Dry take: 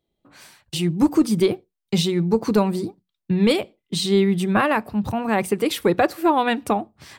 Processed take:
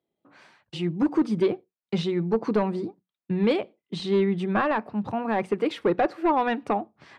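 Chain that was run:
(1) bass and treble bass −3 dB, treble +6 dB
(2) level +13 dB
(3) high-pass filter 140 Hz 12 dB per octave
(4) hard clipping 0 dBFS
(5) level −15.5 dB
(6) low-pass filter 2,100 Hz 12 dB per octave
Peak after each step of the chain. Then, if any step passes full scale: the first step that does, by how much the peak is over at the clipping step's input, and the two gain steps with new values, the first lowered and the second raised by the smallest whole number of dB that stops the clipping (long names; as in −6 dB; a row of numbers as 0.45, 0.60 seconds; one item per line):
−7.0, +6.0, +7.5, 0.0, −15.5, −15.0 dBFS
step 2, 7.5 dB
step 2 +5 dB, step 5 −7.5 dB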